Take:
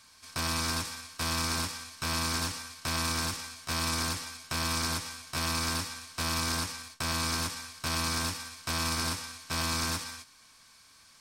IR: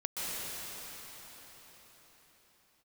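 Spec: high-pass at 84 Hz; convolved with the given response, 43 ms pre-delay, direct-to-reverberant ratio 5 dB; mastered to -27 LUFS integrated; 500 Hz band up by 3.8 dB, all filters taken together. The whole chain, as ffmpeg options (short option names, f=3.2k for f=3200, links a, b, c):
-filter_complex "[0:a]highpass=84,equalizer=f=500:t=o:g=5,asplit=2[a][b];[1:a]atrim=start_sample=2205,adelay=43[c];[b][c]afir=irnorm=-1:irlink=0,volume=-11.5dB[d];[a][d]amix=inputs=2:normalize=0,volume=3.5dB"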